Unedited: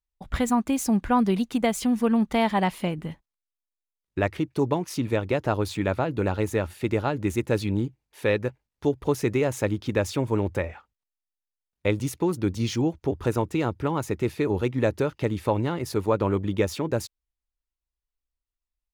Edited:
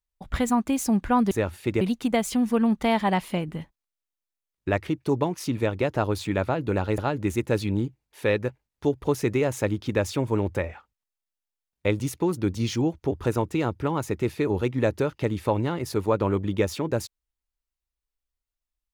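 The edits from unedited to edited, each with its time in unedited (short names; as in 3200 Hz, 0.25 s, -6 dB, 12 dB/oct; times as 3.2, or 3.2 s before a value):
6.48–6.98 move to 1.31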